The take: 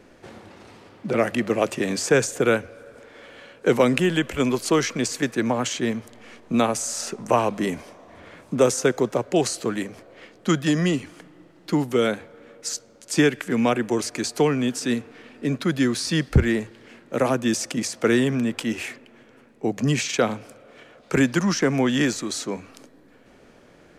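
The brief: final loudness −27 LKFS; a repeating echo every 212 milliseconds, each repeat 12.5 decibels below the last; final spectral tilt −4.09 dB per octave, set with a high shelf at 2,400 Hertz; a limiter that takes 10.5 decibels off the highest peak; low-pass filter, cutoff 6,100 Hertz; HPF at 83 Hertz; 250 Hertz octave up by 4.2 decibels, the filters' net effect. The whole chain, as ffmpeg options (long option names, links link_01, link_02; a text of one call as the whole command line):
ffmpeg -i in.wav -af "highpass=83,lowpass=6100,equalizer=frequency=250:width_type=o:gain=5,highshelf=frequency=2400:gain=7.5,alimiter=limit=-13dB:level=0:latency=1,aecho=1:1:212|424|636:0.237|0.0569|0.0137,volume=-3.5dB" out.wav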